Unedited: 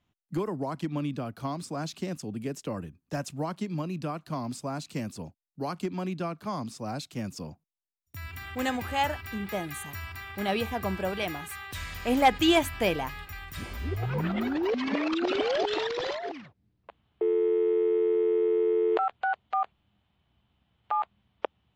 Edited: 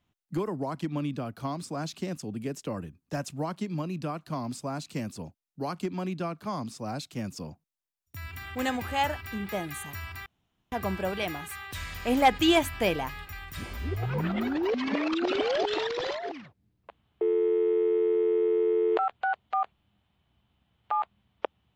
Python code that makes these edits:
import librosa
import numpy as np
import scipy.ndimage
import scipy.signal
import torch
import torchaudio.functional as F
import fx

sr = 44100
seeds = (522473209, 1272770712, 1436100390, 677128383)

y = fx.edit(x, sr, fx.room_tone_fill(start_s=10.26, length_s=0.46), tone=tone)